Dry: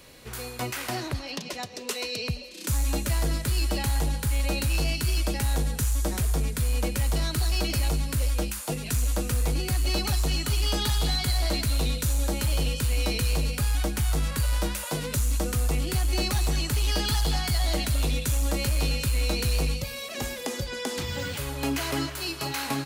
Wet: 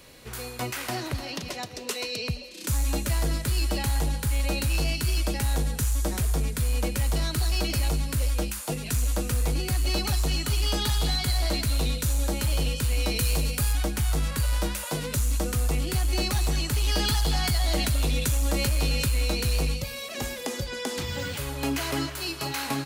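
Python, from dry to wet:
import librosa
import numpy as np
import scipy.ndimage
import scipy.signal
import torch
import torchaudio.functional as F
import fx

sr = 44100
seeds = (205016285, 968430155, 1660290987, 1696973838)

y = fx.echo_throw(x, sr, start_s=0.75, length_s=0.54, ms=300, feedback_pct=45, wet_db=-11.0)
y = fx.high_shelf(y, sr, hz=7500.0, db=7.0, at=(13.16, 13.73))
y = fx.env_flatten(y, sr, amount_pct=50, at=(16.86, 19.23))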